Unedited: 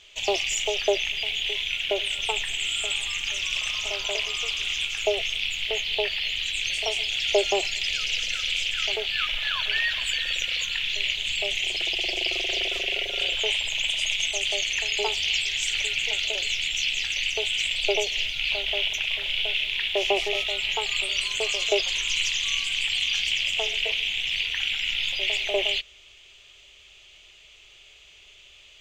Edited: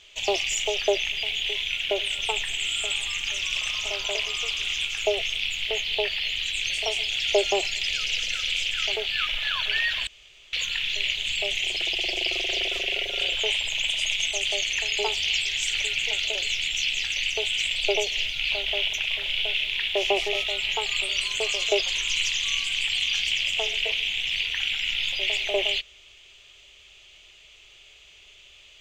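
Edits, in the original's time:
10.07–10.53 s: room tone

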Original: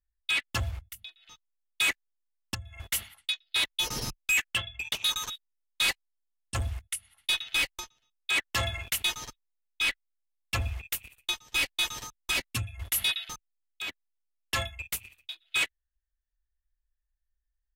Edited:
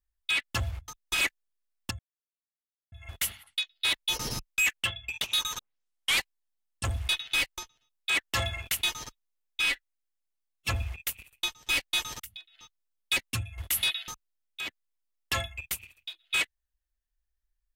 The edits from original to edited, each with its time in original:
0.88–1.85 s: swap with 12.05–12.38 s
2.63 s: insert silence 0.93 s
5.30 s: tape start 0.59 s
6.80–7.30 s: delete
9.83–10.54 s: stretch 1.5×

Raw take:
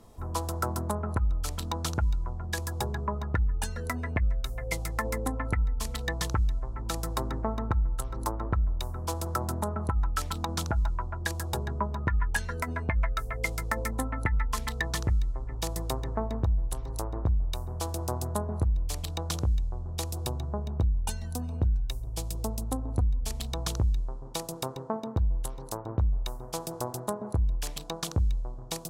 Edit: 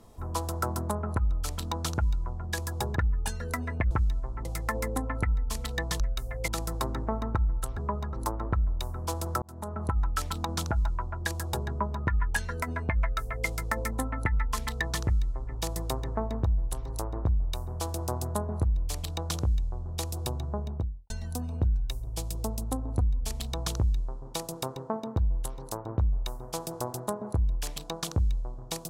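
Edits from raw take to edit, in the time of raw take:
2.96–3.32 s: move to 8.13 s
4.27–4.75 s: swap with 6.30–6.84 s
9.42–9.89 s: fade in
20.59–21.10 s: studio fade out

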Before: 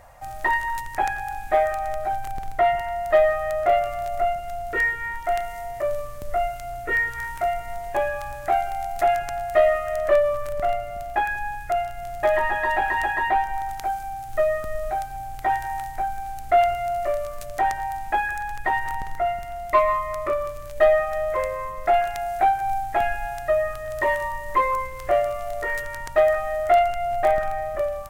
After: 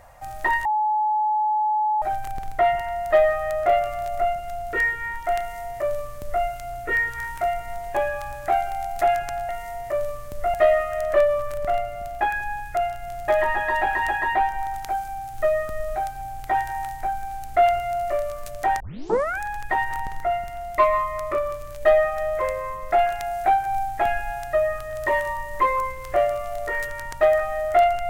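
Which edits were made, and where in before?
0.65–2.02 s: bleep 854 Hz -18.5 dBFS
5.39–6.44 s: copy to 9.49 s
17.75 s: tape start 0.60 s

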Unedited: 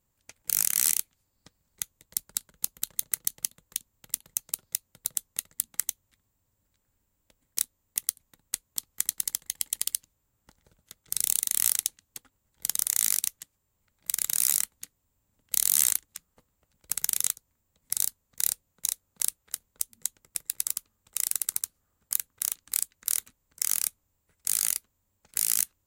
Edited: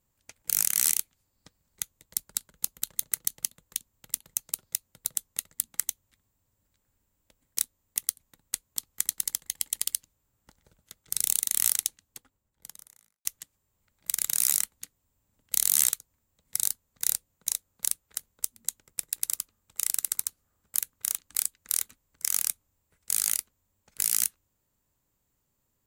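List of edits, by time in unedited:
11.82–13.25 s: studio fade out
15.90–17.27 s: delete

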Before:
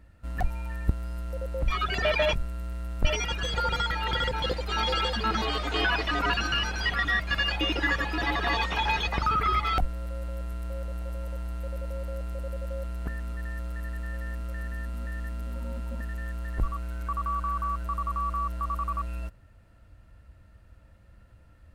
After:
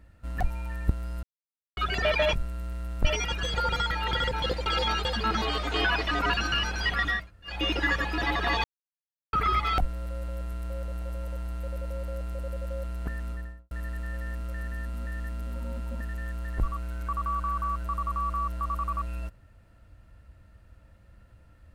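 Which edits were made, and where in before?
1.23–1.77 s: mute
4.66–5.05 s: reverse
7.19–7.54 s: room tone, crossfade 0.24 s
8.64–9.33 s: mute
13.28–13.71 s: studio fade out

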